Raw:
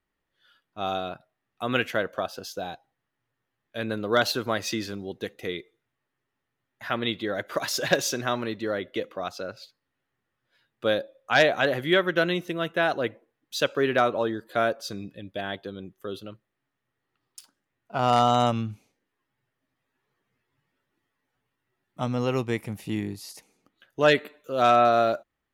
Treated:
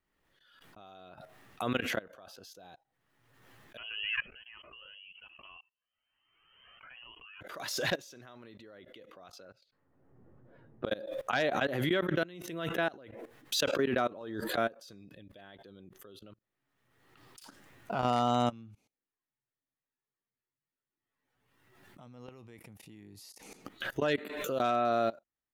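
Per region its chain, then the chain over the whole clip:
3.77–7.41 s: frequency inversion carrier 3.1 kHz + Shepard-style flanger rising 1.2 Hz
9.45–10.91 s: treble shelf 3.8 kHz -4.5 dB + level-controlled noise filter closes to 460 Hz, open at -37.5 dBFS + inverted gate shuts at -21 dBFS, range -37 dB
whole clip: level held to a coarse grid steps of 23 dB; dynamic bell 250 Hz, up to +5 dB, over -41 dBFS, Q 1.1; swell ahead of each attack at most 41 dB/s; trim -6.5 dB

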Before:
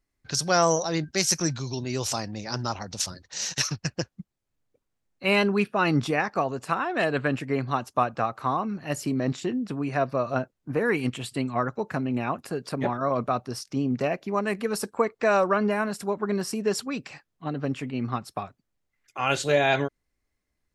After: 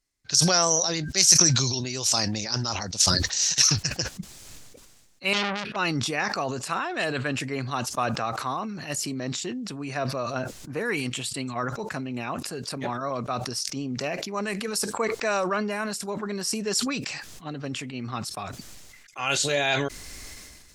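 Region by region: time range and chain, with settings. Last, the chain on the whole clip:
5.33–5.76 s: distance through air 290 m + transformer saturation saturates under 2.3 kHz
whole clip: peaking EQ 6.5 kHz +13.5 dB 2.5 oct; decay stretcher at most 31 dB/s; trim -6 dB

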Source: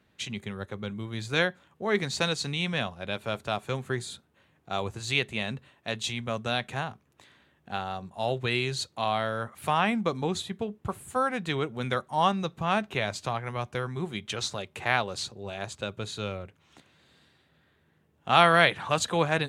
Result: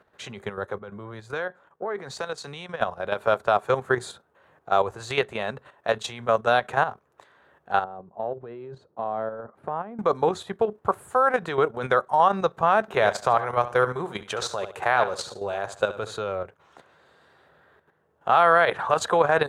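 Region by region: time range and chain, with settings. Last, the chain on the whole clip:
0.79–2.81 s: compression 5:1, threshold -35 dBFS + three bands expanded up and down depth 70%
7.84–9.99 s: band-pass filter 240 Hz, Q 1 + compression 4:1, threshold -35 dBFS
12.81–16.16 s: treble shelf 6.3 kHz +5.5 dB + short-mantissa float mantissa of 8-bit + feedback delay 72 ms, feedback 29%, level -12 dB
whole clip: high-order bell 810 Hz +13 dB 2.4 oct; level held to a coarse grid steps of 10 dB; loudness maximiser +8 dB; trim -6.5 dB

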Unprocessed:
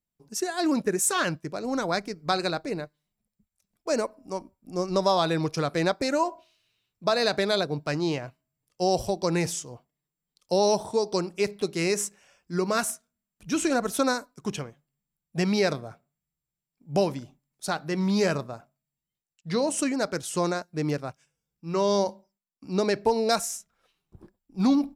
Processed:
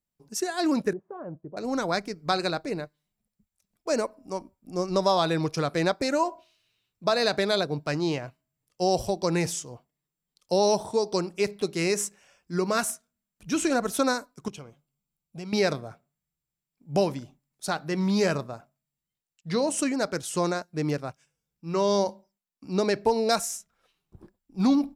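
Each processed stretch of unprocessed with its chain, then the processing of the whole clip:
0.93–1.57 s: compression 1.5:1, threshold -31 dBFS + four-pole ladder low-pass 890 Hz, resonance 25%
14.48–15.53 s: peaking EQ 1.7 kHz -3.5 dB 0.29 oct + band-stop 1.8 kHz, Q 5.6 + compression 2:1, threshold -45 dBFS
whole clip: none

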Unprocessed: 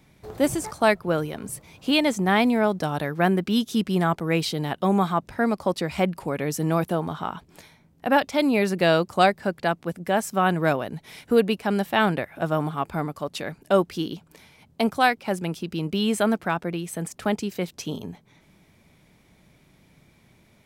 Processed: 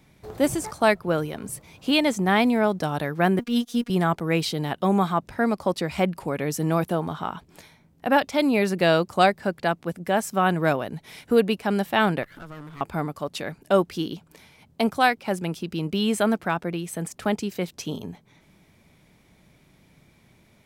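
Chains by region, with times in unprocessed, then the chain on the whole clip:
3.39–3.90 s: companding laws mixed up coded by A + robot voice 238 Hz
12.23–12.81 s: comb filter that takes the minimum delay 0.59 ms + compression 3:1, threshold -41 dBFS
whole clip: none

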